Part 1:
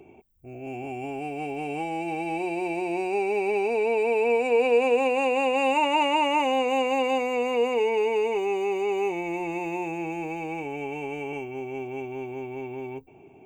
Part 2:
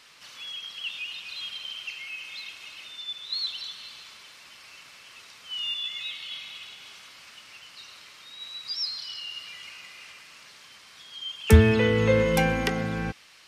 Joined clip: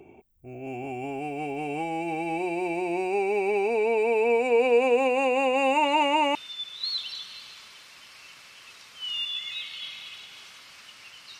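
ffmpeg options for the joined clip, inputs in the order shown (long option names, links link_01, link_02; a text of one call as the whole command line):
ffmpeg -i cue0.wav -i cue1.wav -filter_complex "[1:a]asplit=2[link_01][link_02];[0:a]apad=whole_dur=11.39,atrim=end=11.39,atrim=end=6.352[link_03];[link_02]atrim=start=2.838:end=7.88[link_04];[link_01]atrim=start=2.3:end=2.84,asetpts=PTS-STARTPTS,volume=-12.5dB,afade=type=in:duration=0.004:curve=hsin,afade=type=out:start_time=0.536:duration=0.004:curve=hsin,adelay=256221S[link_05];[link_03][link_04]acrossfade=duration=0.004:curve1=hsin:curve2=hsin[link_06];[link_06][link_05]amix=inputs=2:normalize=0" out.wav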